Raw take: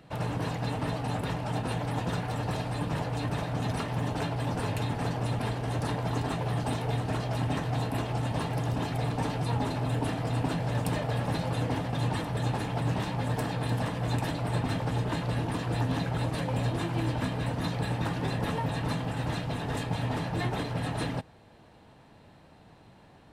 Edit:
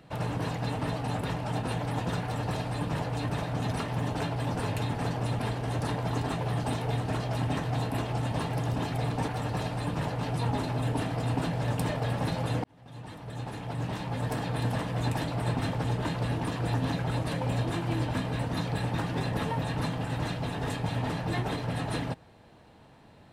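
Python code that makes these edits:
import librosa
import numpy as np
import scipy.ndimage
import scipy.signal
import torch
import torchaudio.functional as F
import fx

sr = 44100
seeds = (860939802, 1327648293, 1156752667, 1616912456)

y = fx.edit(x, sr, fx.duplicate(start_s=2.22, length_s=0.93, to_s=9.28),
    fx.fade_in_span(start_s=11.71, length_s=1.89), tone=tone)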